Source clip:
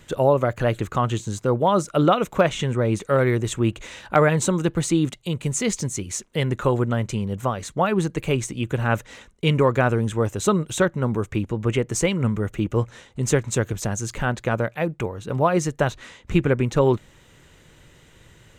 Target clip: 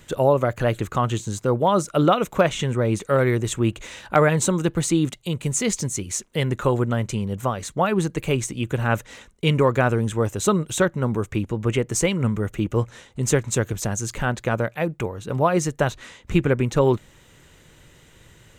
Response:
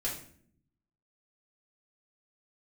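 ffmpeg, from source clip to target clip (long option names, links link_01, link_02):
-af "highshelf=frequency=7900:gain=5"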